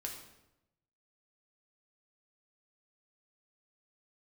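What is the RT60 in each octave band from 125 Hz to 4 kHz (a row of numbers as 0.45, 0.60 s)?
1.2, 1.0, 0.95, 0.85, 0.75, 0.70 s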